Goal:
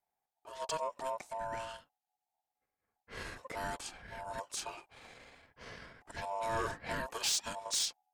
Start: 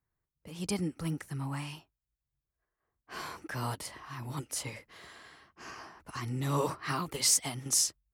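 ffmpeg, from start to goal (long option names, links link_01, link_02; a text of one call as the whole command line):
ffmpeg -i in.wav -af "asetrate=35002,aresample=44100,atempo=1.25992,aeval=exprs='val(0)*sin(2*PI*790*n/s)':channel_layout=same,asoftclip=type=tanh:threshold=-25.5dB" out.wav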